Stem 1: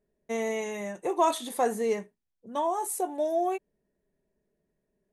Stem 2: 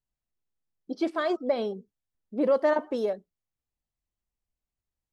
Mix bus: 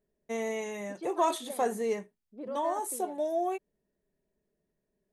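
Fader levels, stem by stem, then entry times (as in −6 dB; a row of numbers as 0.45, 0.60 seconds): −3.0, −16.0 decibels; 0.00, 0.00 seconds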